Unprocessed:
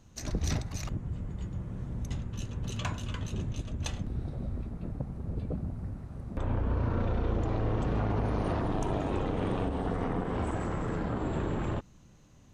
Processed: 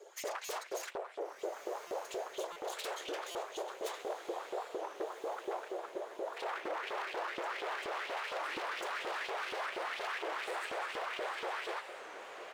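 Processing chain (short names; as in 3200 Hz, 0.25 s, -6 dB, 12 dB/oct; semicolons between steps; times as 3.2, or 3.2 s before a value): minimum comb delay 4.5 ms; comb 3.9 ms, depth 90%; in parallel at -2.5 dB: compressor, threshold -39 dBFS, peak gain reduction 15 dB; on the sum: whisperiser; flange 0.16 Hz, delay 3.6 ms, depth 8.1 ms, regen -43%; wavefolder -35.5 dBFS; frequency shift +330 Hz; LFO high-pass saw up 4.2 Hz 330–3300 Hz; on a send: diffused feedback echo 1.421 s, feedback 56%, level -10.5 dB; on the sum: stuck buffer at 0.45/1.87/2.52/3.31, samples 256, times 6; record warp 33 1/3 rpm, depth 160 cents; gain -1.5 dB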